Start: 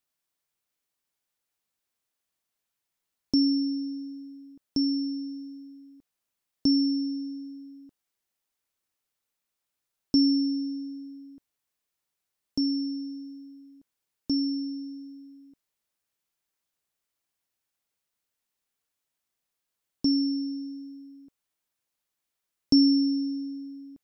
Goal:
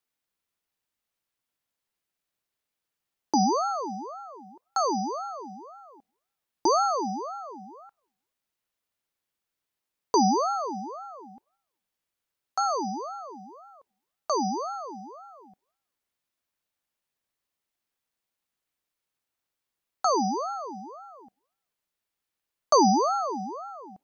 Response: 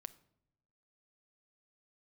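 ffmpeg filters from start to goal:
-filter_complex "[0:a]asplit=2[s0][s1];[1:a]atrim=start_sample=2205,lowpass=5000[s2];[s1][s2]afir=irnorm=-1:irlink=0,volume=0.794[s3];[s0][s3]amix=inputs=2:normalize=0,aeval=exprs='val(0)*sin(2*PI*780*n/s+780*0.4/1.9*sin(2*PI*1.9*n/s))':c=same"

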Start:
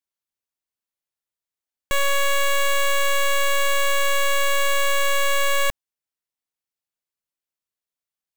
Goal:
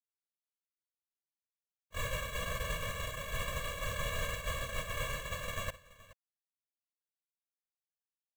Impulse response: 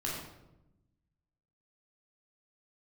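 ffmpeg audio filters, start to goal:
-af "afftfilt=real='hypot(re,im)*cos(2*PI*random(0))':imag='hypot(re,im)*sin(2*PI*random(1))':win_size=512:overlap=0.75,agate=range=0.02:threshold=0.0562:ratio=16:detection=peak,aecho=1:1:56|425:0.133|0.106,volume=0.376"

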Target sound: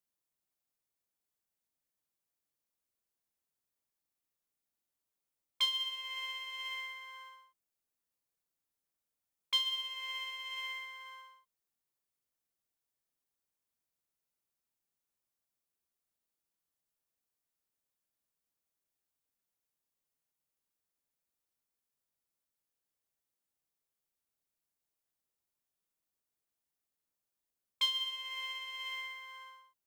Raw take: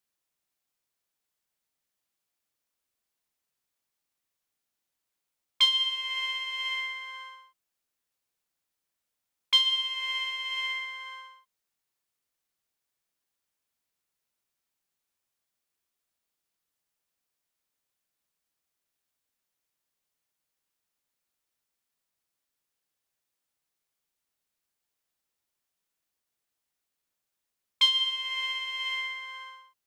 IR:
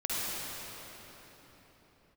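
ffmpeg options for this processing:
-af "equalizer=f=2700:w=0.38:g=-6,acrusher=bits=6:mode=log:mix=0:aa=0.000001,volume=0.668"

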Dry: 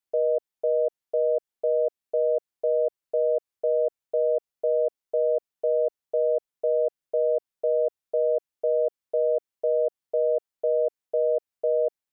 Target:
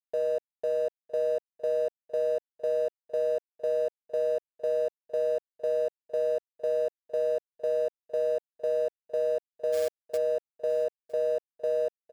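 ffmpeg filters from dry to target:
-filter_complex "[0:a]alimiter=limit=0.0944:level=0:latency=1,aeval=exprs='sgn(val(0))*max(abs(val(0))-0.00447,0)':c=same,asplit=3[s0][s1][s2];[s0]afade=t=out:st=9.72:d=0.02[s3];[s1]acrusher=bits=3:mode=log:mix=0:aa=0.000001,afade=t=in:st=9.72:d=0.02,afade=t=out:st=10.16:d=0.02[s4];[s2]afade=t=in:st=10.16:d=0.02[s5];[s3][s4][s5]amix=inputs=3:normalize=0,aecho=1:1:958:0.0944"

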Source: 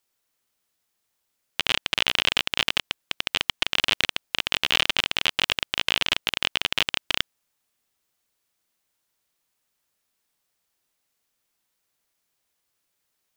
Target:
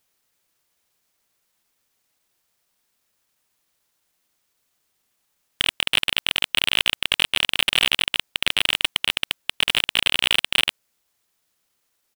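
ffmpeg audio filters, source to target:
-af "areverse,volume=3.16,asoftclip=hard,volume=0.316,atempo=1.1,volume=1.78"

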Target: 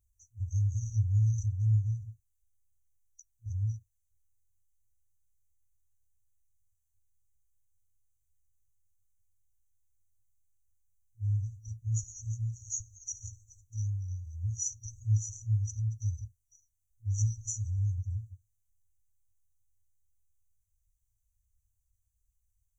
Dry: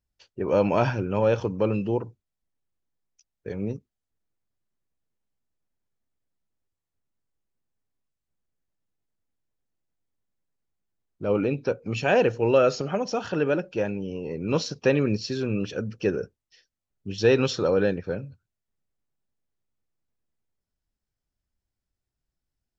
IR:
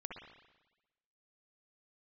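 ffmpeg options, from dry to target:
-af "afftfilt=real='re*(1-between(b*sr/4096,110,5800))':imag='im*(1-between(b*sr/4096,110,5800))':win_size=4096:overlap=0.75,volume=2.66"

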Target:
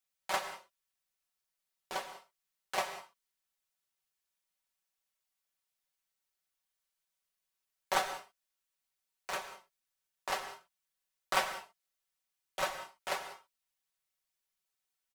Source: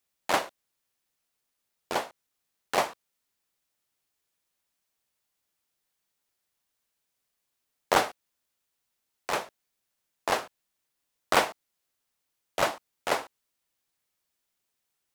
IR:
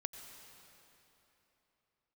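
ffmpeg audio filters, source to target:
-filter_complex "[0:a]equalizer=f=260:t=o:w=1.9:g=-9,aecho=1:1:5.3:0.81[s0];[1:a]atrim=start_sample=2205,afade=t=out:st=0.25:d=0.01,atrim=end_sample=11466[s1];[s0][s1]afir=irnorm=-1:irlink=0,volume=0.501"

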